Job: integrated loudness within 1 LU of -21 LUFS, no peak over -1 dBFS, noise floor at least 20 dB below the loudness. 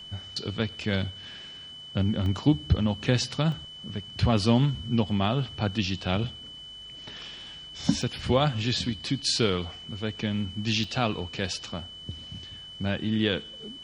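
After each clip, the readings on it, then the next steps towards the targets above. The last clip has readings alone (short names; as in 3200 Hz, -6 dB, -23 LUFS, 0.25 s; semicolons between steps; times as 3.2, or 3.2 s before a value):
dropouts 4; longest dropout 1.9 ms; steady tone 3000 Hz; tone level -41 dBFS; loudness -27.5 LUFS; peak -8.5 dBFS; loudness target -21.0 LUFS
-> interpolate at 2.26/3.52/8.02/10.84, 1.9 ms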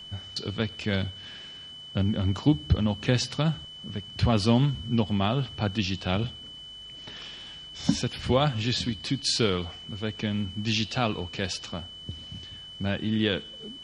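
dropouts 0; steady tone 3000 Hz; tone level -41 dBFS
-> notch 3000 Hz, Q 30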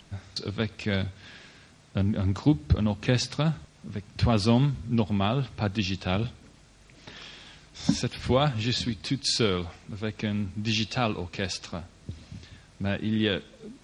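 steady tone none; loudness -28.0 LUFS; peak -8.5 dBFS; loudness target -21.0 LUFS
-> gain +7 dB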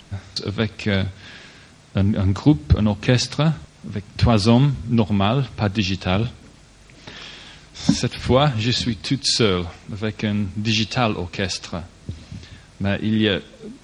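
loudness -21.0 LUFS; peak -1.5 dBFS; noise floor -48 dBFS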